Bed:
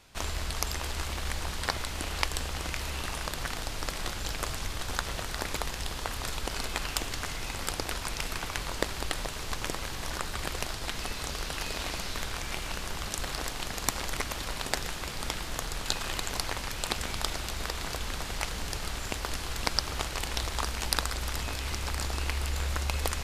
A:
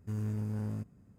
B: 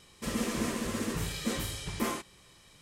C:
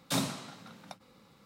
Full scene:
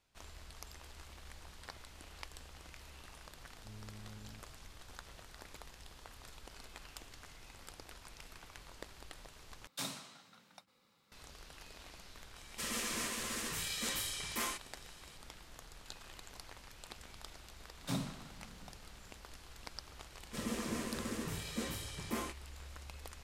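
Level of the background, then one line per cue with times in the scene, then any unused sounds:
bed −19.5 dB
0:03.57: mix in A −17.5 dB + one half of a high-frequency compander decoder only
0:09.67: overwrite with C −12 dB + tilt shelving filter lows −5 dB, about 820 Hz
0:12.36: mix in B −7 dB + tilt shelving filter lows −8 dB, about 810 Hz
0:17.77: mix in C −10 dB + bass and treble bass +8 dB, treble −2 dB
0:20.11: mix in B −7 dB + high-pass filter 62 Hz

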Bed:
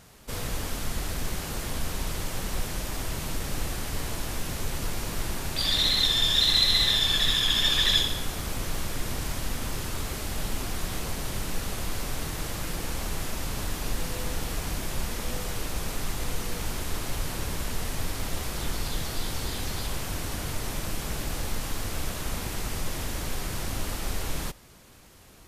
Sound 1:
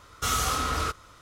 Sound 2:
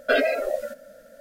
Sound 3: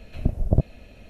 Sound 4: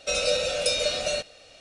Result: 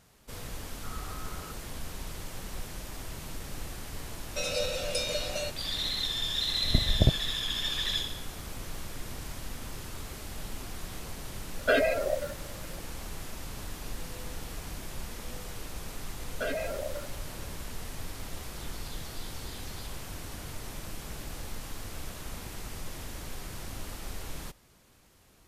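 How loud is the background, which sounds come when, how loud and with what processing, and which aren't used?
bed −8.5 dB
0:00.61: mix in 1 −16 dB + low-pass filter 1,500 Hz 24 dB per octave
0:04.29: mix in 4 −7 dB
0:06.49: mix in 3 −3 dB
0:11.59: mix in 2 −3.5 dB
0:16.32: mix in 2 −7.5 dB + downward compressor 2 to 1, threshold −25 dBFS

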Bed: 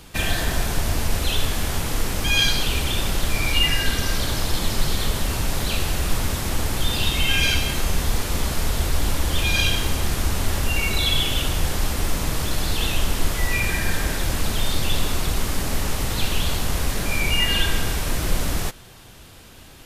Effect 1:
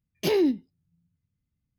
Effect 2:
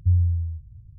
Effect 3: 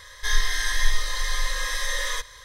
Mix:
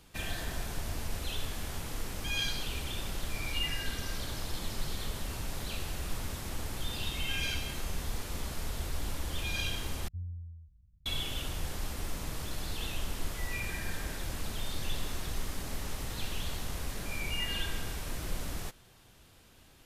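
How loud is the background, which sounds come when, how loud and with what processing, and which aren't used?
bed −14 dB
0:10.08: overwrite with 2 −16.5 dB + comb filter 4.5 ms, depth 75%
0:14.54: mix in 3 −9 dB + guitar amp tone stack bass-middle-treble 6-0-2
not used: 1

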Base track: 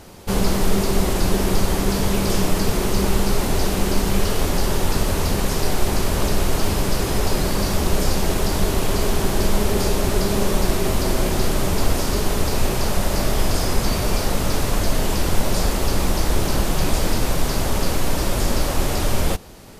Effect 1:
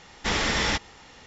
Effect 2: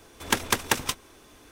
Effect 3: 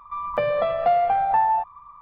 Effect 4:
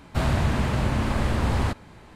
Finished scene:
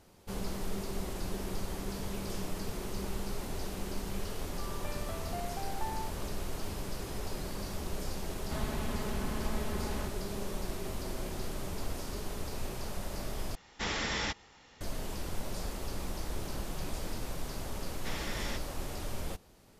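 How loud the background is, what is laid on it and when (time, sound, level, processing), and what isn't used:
base track −18 dB
0:04.47: mix in 3 −15 dB + high-pass filter 1,500 Hz 6 dB per octave
0:08.35: mix in 4 −16 dB + comb filter 4.7 ms, depth 95%
0:13.55: overwrite with 1 −9 dB + downsampling to 32,000 Hz
0:17.80: mix in 1 −15.5 dB
not used: 2

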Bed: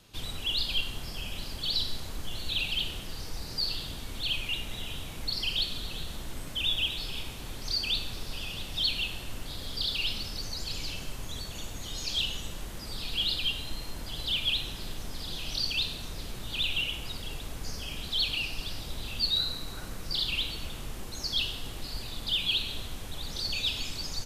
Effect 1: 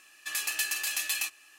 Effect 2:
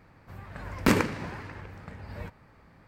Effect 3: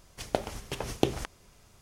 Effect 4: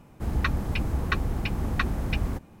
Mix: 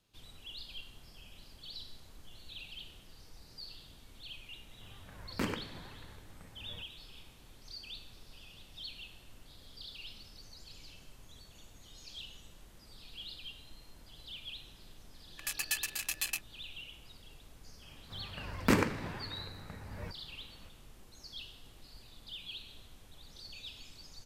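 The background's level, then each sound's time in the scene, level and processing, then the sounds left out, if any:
bed −17 dB
0:04.53: mix in 2 −13 dB
0:15.12: mix in 1 −1.5 dB + adaptive Wiener filter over 41 samples
0:17.82: mix in 2 −4.5 dB
not used: 3, 4

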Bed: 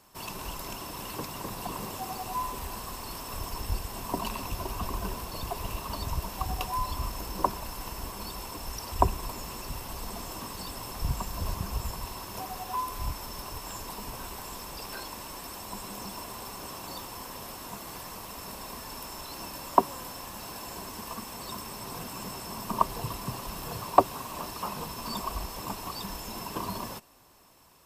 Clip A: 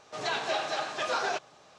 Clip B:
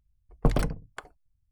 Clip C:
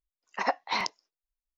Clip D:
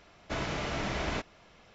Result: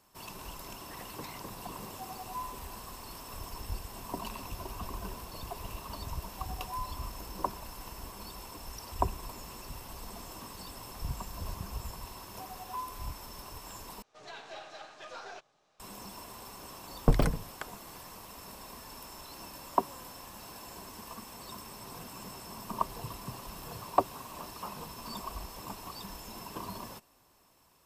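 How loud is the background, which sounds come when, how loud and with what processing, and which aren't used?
bed −6.5 dB
0:00.53: mix in C −15.5 dB + downward compressor, threshold −29 dBFS
0:14.02: overwrite with A −14 dB + gain on one half-wave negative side −3 dB
0:16.63: mix in B −0.5 dB
not used: D

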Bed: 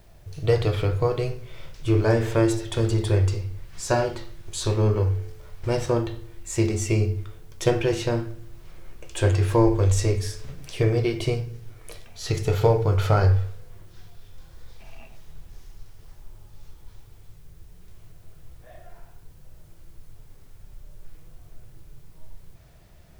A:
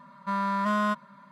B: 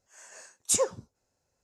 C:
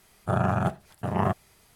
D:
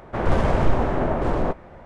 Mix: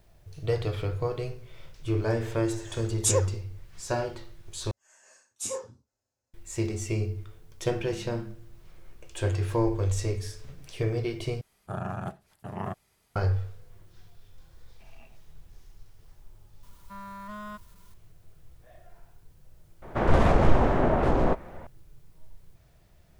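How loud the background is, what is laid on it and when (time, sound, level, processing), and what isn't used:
bed −7 dB
0:02.35: mix in B
0:04.71: overwrite with B −12 dB + reverb whose tail is shaped and stops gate 130 ms falling, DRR −1 dB
0:07.39: mix in A −11.5 dB + inverse Chebyshev low-pass filter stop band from 620 Hz, stop band 60 dB
0:11.41: overwrite with C −9.5 dB
0:16.63: mix in A −14.5 dB + spike at every zero crossing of −35.5 dBFS
0:19.82: mix in D −0.5 dB + wow of a warped record 78 rpm, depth 250 cents

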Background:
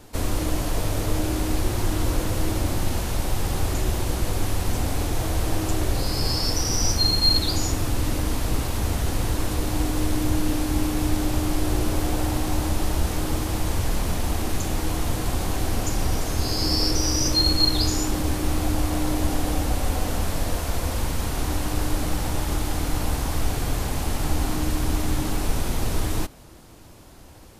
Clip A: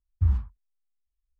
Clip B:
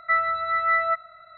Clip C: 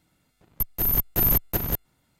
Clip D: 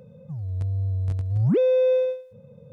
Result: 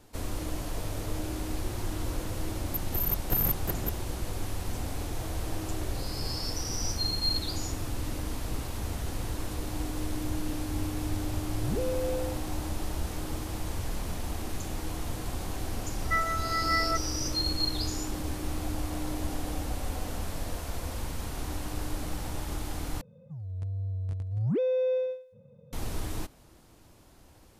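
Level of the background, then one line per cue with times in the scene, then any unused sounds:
background −9.5 dB
0:02.14: mix in C −5.5 dB + adaptive Wiener filter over 15 samples
0:10.21: mix in D −13 dB
0:16.02: mix in B −6.5 dB
0:23.01: overwrite with D −7.5 dB
not used: A

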